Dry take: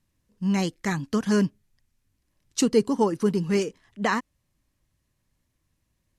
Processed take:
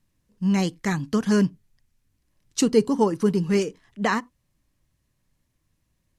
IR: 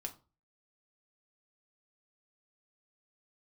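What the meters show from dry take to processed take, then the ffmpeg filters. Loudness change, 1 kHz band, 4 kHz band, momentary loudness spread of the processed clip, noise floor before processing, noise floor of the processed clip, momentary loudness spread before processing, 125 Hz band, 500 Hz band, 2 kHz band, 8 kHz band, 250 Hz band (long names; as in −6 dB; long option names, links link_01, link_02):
+2.0 dB, +1.0 dB, +1.0 dB, 8 LU, −76 dBFS, −73 dBFS, 8 LU, +2.5 dB, +1.5 dB, +1.0 dB, +1.0 dB, +2.0 dB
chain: -filter_complex "[0:a]asplit=2[link_01][link_02];[1:a]atrim=start_sample=2205,atrim=end_sample=4410,lowshelf=frequency=410:gain=9.5[link_03];[link_02][link_03]afir=irnorm=-1:irlink=0,volume=-15.5dB[link_04];[link_01][link_04]amix=inputs=2:normalize=0"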